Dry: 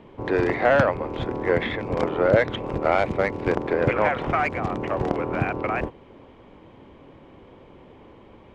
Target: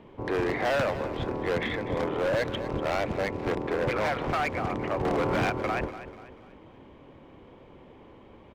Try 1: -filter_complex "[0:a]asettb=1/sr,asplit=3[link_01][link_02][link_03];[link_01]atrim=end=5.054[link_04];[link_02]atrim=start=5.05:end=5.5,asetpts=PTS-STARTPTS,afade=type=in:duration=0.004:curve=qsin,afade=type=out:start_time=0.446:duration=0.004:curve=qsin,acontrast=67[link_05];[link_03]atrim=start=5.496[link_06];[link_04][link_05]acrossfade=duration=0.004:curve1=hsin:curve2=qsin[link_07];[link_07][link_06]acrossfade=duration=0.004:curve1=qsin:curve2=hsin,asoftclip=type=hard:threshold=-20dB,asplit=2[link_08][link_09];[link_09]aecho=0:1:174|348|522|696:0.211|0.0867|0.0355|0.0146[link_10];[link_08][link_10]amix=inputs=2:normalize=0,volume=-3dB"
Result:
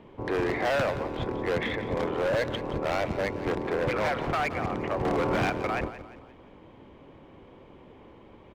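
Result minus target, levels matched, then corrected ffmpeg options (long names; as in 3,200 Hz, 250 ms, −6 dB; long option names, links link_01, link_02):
echo 70 ms early
-filter_complex "[0:a]asettb=1/sr,asplit=3[link_01][link_02][link_03];[link_01]atrim=end=5.054[link_04];[link_02]atrim=start=5.05:end=5.5,asetpts=PTS-STARTPTS,afade=type=in:duration=0.004:curve=qsin,afade=type=out:start_time=0.446:duration=0.004:curve=qsin,acontrast=67[link_05];[link_03]atrim=start=5.496[link_06];[link_04][link_05]acrossfade=duration=0.004:curve1=hsin:curve2=qsin[link_07];[link_07][link_06]acrossfade=duration=0.004:curve1=qsin:curve2=hsin,asoftclip=type=hard:threshold=-20dB,asplit=2[link_08][link_09];[link_09]aecho=0:1:244|488|732|976:0.211|0.0867|0.0355|0.0146[link_10];[link_08][link_10]amix=inputs=2:normalize=0,volume=-3dB"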